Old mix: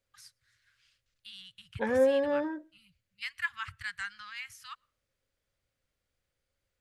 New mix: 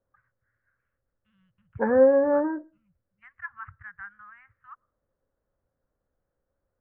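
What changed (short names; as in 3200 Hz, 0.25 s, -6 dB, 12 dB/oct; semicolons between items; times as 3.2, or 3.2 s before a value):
second voice +7.0 dB; master: add steep low-pass 1600 Hz 36 dB/oct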